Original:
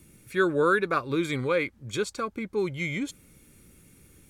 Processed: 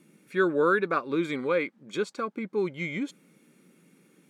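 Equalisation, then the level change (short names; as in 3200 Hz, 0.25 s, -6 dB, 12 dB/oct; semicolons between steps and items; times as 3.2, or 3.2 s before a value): brick-wall FIR high-pass 150 Hz; LPF 2600 Hz 6 dB/oct; 0.0 dB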